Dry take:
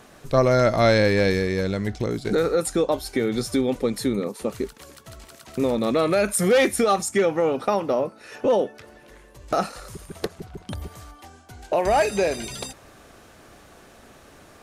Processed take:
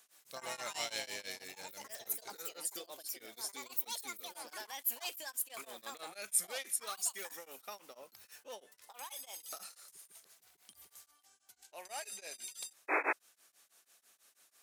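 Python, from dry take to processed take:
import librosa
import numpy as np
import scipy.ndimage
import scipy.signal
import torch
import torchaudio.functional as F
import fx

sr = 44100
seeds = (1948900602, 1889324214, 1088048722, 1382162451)

y = fx.echo_pitch(x, sr, ms=111, semitones=5, count=2, db_per_echo=-3.0)
y = np.diff(y, prepend=0.0)
y = fx.spec_paint(y, sr, seeds[0], shape='noise', start_s=12.88, length_s=0.25, low_hz=280.0, high_hz=2600.0, level_db=-24.0)
y = y * np.abs(np.cos(np.pi * 6.1 * np.arange(len(y)) / sr))
y = y * 10.0 ** (-6.0 / 20.0)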